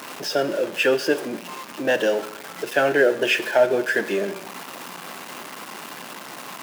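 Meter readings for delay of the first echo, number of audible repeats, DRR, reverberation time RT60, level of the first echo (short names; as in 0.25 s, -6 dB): none, none, 10.5 dB, 0.80 s, none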